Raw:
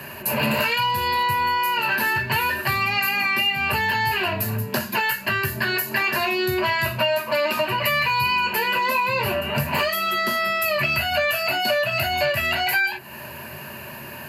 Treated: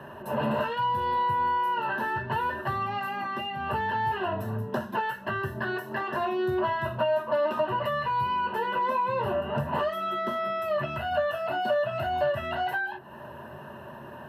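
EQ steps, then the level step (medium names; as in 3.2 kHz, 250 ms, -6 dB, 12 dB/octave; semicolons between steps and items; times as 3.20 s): boxcar filter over 19 samples; bass shelf 290 Hz -7 dB; 0.0 dB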